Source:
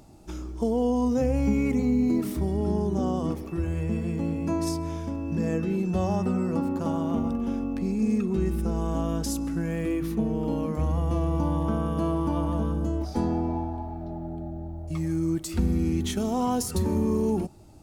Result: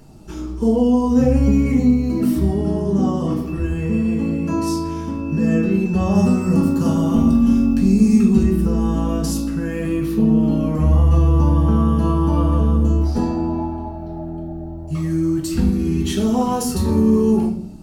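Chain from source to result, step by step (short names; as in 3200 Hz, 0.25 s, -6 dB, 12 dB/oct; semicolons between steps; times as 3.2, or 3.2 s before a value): 6.15–8.43 tone controls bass +6 dB, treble +11 dB; reverb RT60 0.55 s, pre-delay 4 ms, DRR -3.5 dB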